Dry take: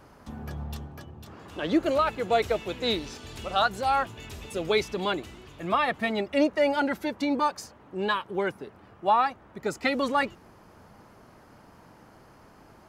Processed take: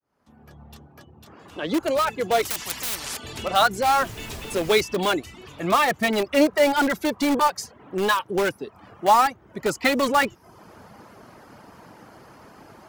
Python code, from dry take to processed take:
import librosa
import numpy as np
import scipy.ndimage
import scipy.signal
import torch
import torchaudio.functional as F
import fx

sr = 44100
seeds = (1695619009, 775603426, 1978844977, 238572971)

p1 = fx.fade_in_head(x, sr, length_s=3.21)
p2 = fx.highpass(p1, sr, hz=120.0, slope=6)
p3 = fx.dereverb_blind(p2, sr, rt60_s=0.52)
p4 = fx.dmg_noise_colour(p3, sr, seeds[0], colour='pink', level_db=-49.0, at=(3.98, 4.72), fade=0.02)
p5 = (np.mod(10.0 ** (24.0 / 20.0) * p4 + 1.0, 2.0) - 1.0) / 10.0 ** (24.0 / 20.0)
p6 = p4 + F.gain(torch.from_numpy(p5), -9.0).numpy()
p7 = fx.spectral_comp(p6, sr, ratio=10.0, at=(2.45, 3.17))
y = F.gain(torch.from_numpy(p7), 5.5).numpy()